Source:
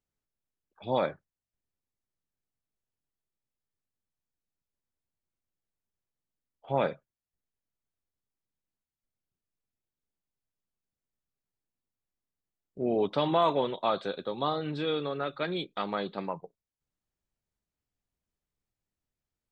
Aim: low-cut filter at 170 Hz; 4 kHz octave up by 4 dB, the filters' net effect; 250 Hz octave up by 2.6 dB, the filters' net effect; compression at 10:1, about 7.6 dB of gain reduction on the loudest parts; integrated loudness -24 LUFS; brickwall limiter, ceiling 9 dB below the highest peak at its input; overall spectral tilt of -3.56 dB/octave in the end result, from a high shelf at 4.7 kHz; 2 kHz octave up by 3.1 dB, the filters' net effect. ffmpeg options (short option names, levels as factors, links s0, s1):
-af "highpass=170,equalizer=f=250:t=o:g=4.5,equalizer=f=2000:t=o:g=4,equalizer=f=4000:t=o:g=7,highshelf=f=4700:g=-8.5,acompressor=threshold=0.0398:ratio=10,volume=4.73,alimiter=limit=0.224:level=0:latency=1"